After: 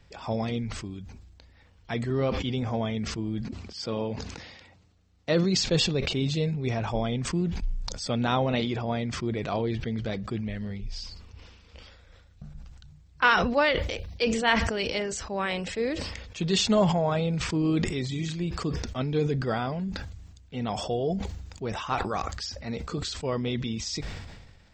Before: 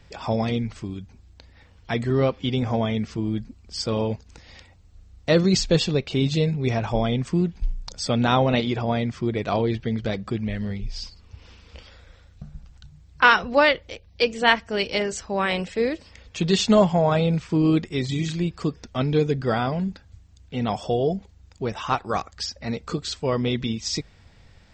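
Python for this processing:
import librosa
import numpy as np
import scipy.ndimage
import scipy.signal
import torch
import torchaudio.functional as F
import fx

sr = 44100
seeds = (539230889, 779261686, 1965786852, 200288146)

y = fx.bandpass_edges(x, sr, low_hz=120.0, high_hz=fx.line((3.41, 5100.0), (5.7, 7300.0)), at=(3.41, 5.7), fade=0.02)
y = fx.sustainer(y, sr, db_per_s=40.0)
y = y * librosa.db_to_amplitude(-6.0)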